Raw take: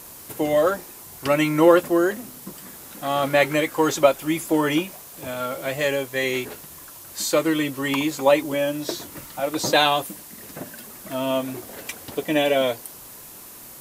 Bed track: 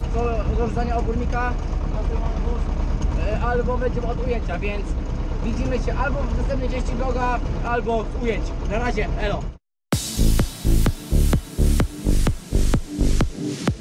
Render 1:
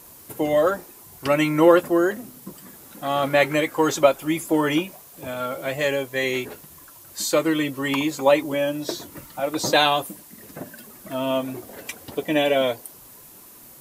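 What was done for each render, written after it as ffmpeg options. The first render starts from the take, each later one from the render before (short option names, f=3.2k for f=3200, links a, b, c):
-af "afftdn=nr=6:nf=-42"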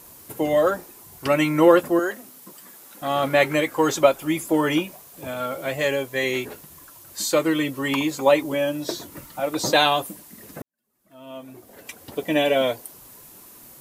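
-filter_complex "[0:a]asettb=1/sr,asplit=3[a][b][c];[a]atrim=end=1.994[d];[b]atrim=start=1.99:end=3.02,asetpts=PTS-STARTPTS,afade=t=in:d=0.004:c=qsin,afade=t=out:st=1.026:d=0.004:c=qsin,highpass=f=620:p=1[e];[c]atrim=start=3.016[f];[d][e]acrossfade=d=0.004:c1=hsin:c2=qsin[g];[g][f]acrossfade=d=0.004:c1=qsin:c2=hsin,asplit=2[h][i];[h]atrim=end=10.62,asetpts=PTS-STARTPTS,afade=t=out:st=10.616:d=0.004:c=hsin[j];[i]atrim=start=10.62,asetpts=PTS-STARTPTS,afade=t=in:d=1.67:c=qua[k];[j][k]concat=n=2:v=0:a=1"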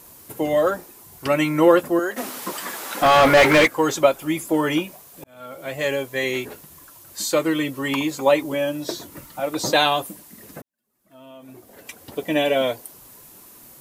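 -filter_complex "[0:a]asplit=3[a][b][c];[a]afade=t=out:st=2.16:d=0.02[d];[b]asplit=2[e][f];[f]highpass=f=720:p=1,volume=29dB,asoftclip=type=tanh:threshold=-5.5dB[g];[e][g]amix=inputs=2:normalize=0,lowpass=f=2.5k:p=1,volume=-6dB,afade=t=in:st=2.16:d=0.02,afade=t=out:st=3.66:d=0.02[h];[c]afade=t=in:st=3.66:d=0.02[i];[d][h][i]amix=inputs=3:normalize=0,asettb=1/sr,asplit=3[j][k][l];[j]atrim=end=10.604[m];[k]atrim=start=10.6:end=11.49,asetpts=PTS-STARTPTS,afade=t=in:d=0.004:c=qsin,afade=t=out:st=0.886:d=0.004:c=qsin,acompressor=threshold=-40dB:ratio=3:attack=3.2:release=140:knee=1:detection=peak[n];[l]atrim=start=11.486[o];[m][n]acrossfade=d=0.004:c1=hsin:c2=qsin[p];[p][o]acrossfade=d=0.004:c1=qsin:c2=hsin,asplit=2[q][r];[q]atrim=end=5.24,asetpts=PTS-STARTPTS,afade=t=out:st=5.236:d=0.004:c=hsin[s];[r]atrim=start=5.24,asetpts=PTS-STARTPTS,afade=t=in:d=0.67[t];[s][t]concat=n=2:v=0:a=1"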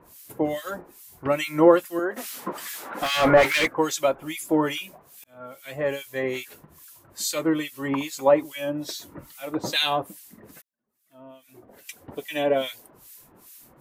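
-filter_complex "[0:a]acrossover=split=1800[a][b];[a]aeval=exprs='val(0)*(1-1/2+1/2*cos(2*PI*2.4*n/s))':c=same[c];[b]aeval=exprs='val(0)*(1-1/2-1/2*cos(2*PI*2.4*n/s))':c=same[d];[c][d]amix=inputs=2:normalize=0"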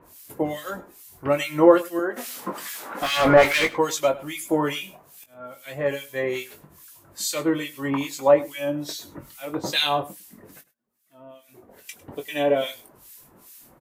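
-filter_complex "[0:a]asplit=2[a][b];[b]adelay=21,volume=-8dB[c];[a][c]amix=inputs=2:normalize=0,aecho=1:1:102:0.106"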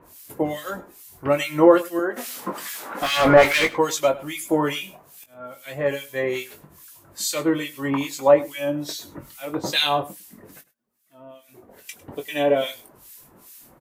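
-af "volume=1.5dB,alimiter=limit=-2dB:level=0:latency=1"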